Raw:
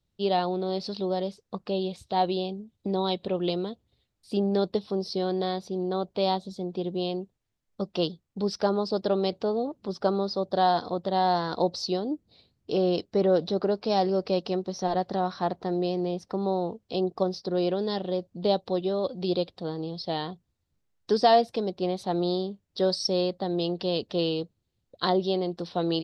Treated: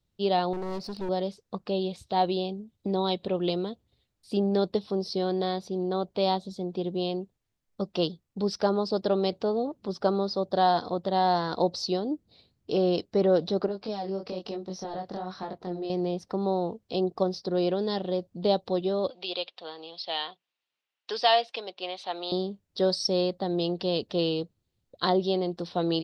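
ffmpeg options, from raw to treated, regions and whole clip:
-filter_complex "[0:a]asettb=1/sr,asplit=3[a][b][c];[a]atrim=end=0.534[d];[b]atrim=start=0.53:end=1.09,asetpts=PTS-STARTPTS,afade=t=in:d=0.004:c=qsin,afade=t=out:st=0.556:d=0.004:c=qsin,equalizer=f=3.4k:t=o:w=0.64:g=-11,aeval=exprs='clip(val(0),-1,0.0133)':c=same[e];[c]atrim=start=1.086[f];[d][e]acrossfade=d=0.004:c1=hsin:c2=qsin[g];[g][f]acrossfade=d=0.004:c1=qsin:c2=hsin,asettb=1/sr,asplit=3[h][i][j];[h]atrim=end=13.664[k];[i]atrim=start=13.66:end=15.9,asetpts=PTS-STARTPTS,afade=t=in:d=0.004:c=qsin,afade=t=out:st=2.236:d=0.004:c=qsin,acompressor=threshold=-26dB:ratio=10:attack=3.2:release=140:knee=1:detection=peak,flanger=delay=19.5:depth=6.4:speed=1.1[l];[j]atrim=start=15.896[m];[k][l]acrossfade=d=0.004:c1=hsin:c2=qsin[n];[n][m]acrossfade=d=0.004:c1=qsin:c2=hsin,asettb=1/sr,asplit=3[o][p][q];[o]atrim=end=19.104[r];[p]atrim=start=19.1:end=22.32,asetpts=PTS-STARTPTS,afade=t=in:d=0.004:c=qsin,afade=t=out:st=3.216:d=0.004:c=qsin,highpass=740,lowpass=5.2k,equalizer=f=2.8k:w=1.8:g=10[s];[q]atrim=start=22.316[t];[r][s]acrossfade=d=0.004:c1=hsin:c2=qsin[u];[u][t]acrossfade=d=0.004:c1=qsin:c2=hsin"

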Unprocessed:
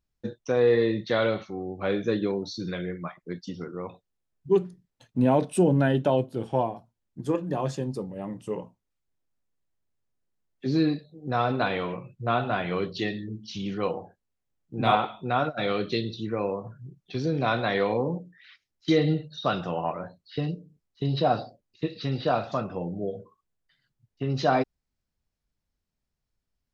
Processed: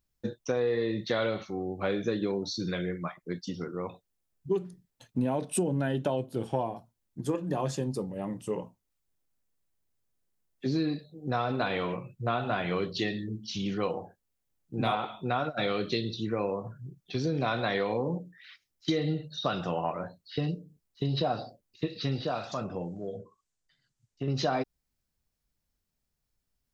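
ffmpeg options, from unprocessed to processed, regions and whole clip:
-filter_complex "[0:a]asettb=1/sr,asplit=3[a][b][c];[a]atrim=end=22.194[d];[b]atrim=start=22.19:end=24.28,asetpts=PTS-STARTPTS,afade=t=in:d=0.004:c=qsin,afade=t=out:st=2.086:d=0.004:c=qsin,acompressor=threshold=-31dB:ratio=1.5:attack=3.2:release=140:knee=1:detection=peak,lowpass=f=7.2k:t=q:w=2,acrossover=split=880[e][f];[e]aeval=exprs='val(0)*(1-0.5/2+0.5/2*cos(2*PI*1.9*n/s))':c=same[g];[f]aeval=exprs='val(0)*(1-0.5/2-0.5/2*cos(2*PI*1.9*n/s))':c=same[h];[g][h]amix=inputs=2:normalize=0[i];[c]atrim=start=24.276[j];[d][i]acrossfade=d=0.004:c1=hsin:c2=qsin[k];[k][j]acrossfade=d=0.004:c1=qsin:c2=hsin,acompressor=threshold=-25dB:ratio=6,highshelf=f=7k:g=9"

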